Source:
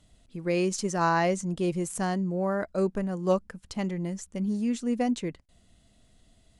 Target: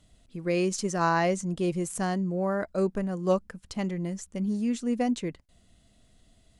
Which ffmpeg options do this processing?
ffmpeg -i in.wav -af "bandreject=frequency=880:width=18" out.wav

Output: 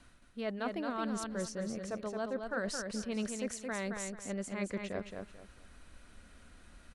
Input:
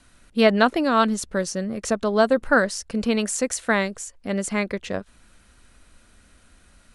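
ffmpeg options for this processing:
ffmpeg -i in.wav -af "highshelf=frequency=4900:gain=-7,areverse,acompressor=threshold=-33dB:ratio=5,areverse,aecho=1:1:220|440|660:0.562|0.146|0.038,volume=-3dB" out.wav

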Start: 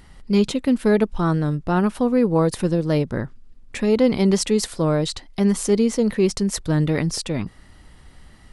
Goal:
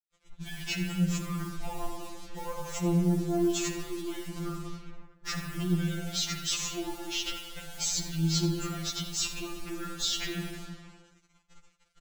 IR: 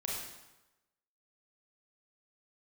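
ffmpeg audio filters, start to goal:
-filter_complex "[0:a]asoftclip=type=tanh:threshold=-13.5dB,acompressor=threshold=-22dB:ratio=6,agate=range=-14dB:threshold=-39dB:ratio=16:detection=peak,alimiter=level_in=1.5dB:limit=-24dB:level=0:latency=1:release=15,volume=-1.5dB,asplit=2[link_01][link_02];[link_02]lowpass=3700[link_03];[1:a]atrim=start_sample=2205,adelay=39[link_04];[link_03][link_04]afir=irnorm=-1:irlink=0,volume=-4.5dB[link_05];[link_01][link_05]amix=inputs=2:normalize=0,asetrate=31311,aresample=44100,acrusher=bits=7:mix=0:aa=0.5,highshelf=frequency=2300:gain=11.5,asplit=2[link_06][link_07];[link_07]aecho=0:1:82:0.211[link_08];[link_06][link_08]amix=inputs=2:normalize=0,afftfilt=real='re*2.83*eq(mod(b,8),0)':imag='im*2.83*eq(mod(b,8),0)':win_size=2048:overlap=0.75,volume=-2dB"

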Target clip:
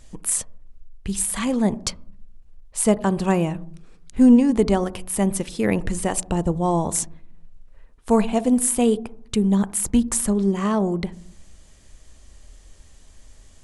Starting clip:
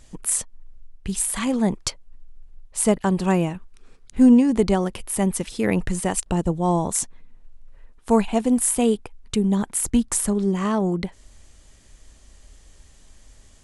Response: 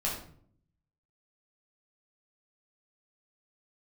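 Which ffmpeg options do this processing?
-filter_complex "[0:a]asplit=2[link_01][link_02];[link_02]lowpass=1200[link_03];[1:a]atrim=start_sample=2205[link_04];[link_03][link_04]afir=irnorm=-1:irlink=0,volume=-18.5dB[link_05];[link_01][link_05]amix=inputs=2:normalize=0"

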